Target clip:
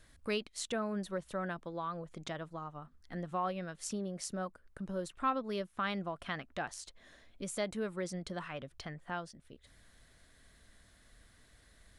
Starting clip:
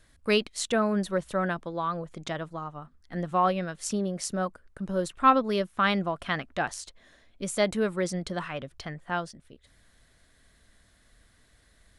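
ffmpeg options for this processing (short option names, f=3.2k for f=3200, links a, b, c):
-af "acompressor=threshold=-49dB:ratio=1.5,volume=-1dB"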